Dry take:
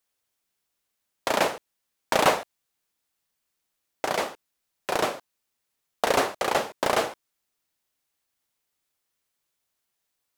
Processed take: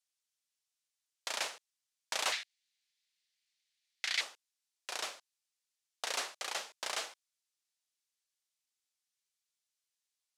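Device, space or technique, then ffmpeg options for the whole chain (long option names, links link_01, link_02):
piezo pickup straight into a mixer: -filter_complex "[0:a]asettb=1/sr,asplit=3[link_01][link_02][link_03];[link_01]atrim=end=2.324[link_04];[link_02]atrim=start=2.32:end=4.21,asetpts=PTS-STARTPTS,afade=type=in:duration=0.004:curve=qsin,afade=type=out:start_time=1.886:duration=0.004:curve=qsin,equalizer=frequency=125:width_type=o:width=1:gain=8,equalizer=frequency=250:width_type=o:width=1:gain=-3,equalizer=frequency=500:width_type=o:width=1:gain=-12,equalizer=frequency=1000:width_type=o:width=1:gain=-7,equalizer=frequency=2000:width_type=o:width=1:gain=11,equalizer=frequency=4000:width_type=o:width=1:gain=8,equalizer=frequency=16000:width_type=o:width=1:gain=-4[link_05];[link_03]atrim=start=4.206[link_06];[link_04][link_05]acrossfade=duration=0.004:curve1=hsin:curve2=qsin[link_07];[link_07][link_06]acrossfade=duration=0.004:curve1=qsin:curve2=hsin,lowpass=6300,aderivative"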